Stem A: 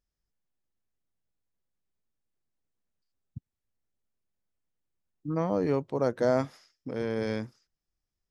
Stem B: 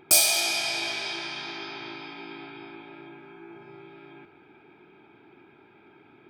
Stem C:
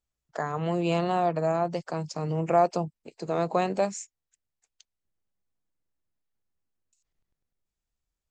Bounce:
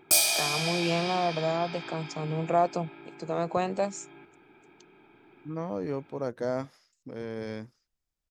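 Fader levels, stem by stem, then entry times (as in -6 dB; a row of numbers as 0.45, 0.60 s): -5.5, -3.0, -2.5 dB; 0.20, 0.00, 0.00 s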